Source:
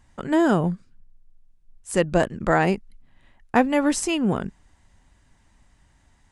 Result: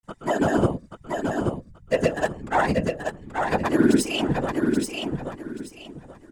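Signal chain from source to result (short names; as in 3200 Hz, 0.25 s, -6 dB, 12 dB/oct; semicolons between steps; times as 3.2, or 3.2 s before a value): self-modulated delay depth 0.058 ms; high shelf 6300 Hz +11 dB; in parallel at -5.5 dB: backlash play -24.5 dBFS; on the sum: metallic resonator 97 Hz, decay 0.27 s, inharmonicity 0.008; grains 0.1 s, spray 0.1 s, pitch spread up and down by 0 st; whisperiser; on a send: feedback echo 0.831 s, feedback 25%, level -4.5 dB; on the sum: gain +4.5 dB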